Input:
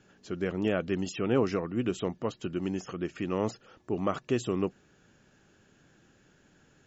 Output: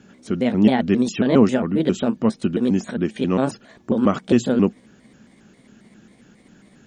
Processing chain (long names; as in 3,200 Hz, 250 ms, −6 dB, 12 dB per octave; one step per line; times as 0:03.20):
pitch shifter gated in a rhythm +4.5 semitones, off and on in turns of 135 ms
harmonic generator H 4 −38 dB, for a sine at −13.5 dBFS
parametric band 220 Hz +13 dB 0.52 octaves
level +8 dB